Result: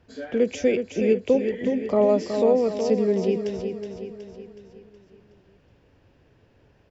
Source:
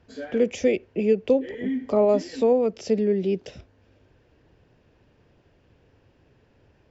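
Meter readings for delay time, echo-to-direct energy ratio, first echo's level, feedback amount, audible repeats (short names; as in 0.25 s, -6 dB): 0.37 s, -5.5 dB, -7.0 dB, 51%, 5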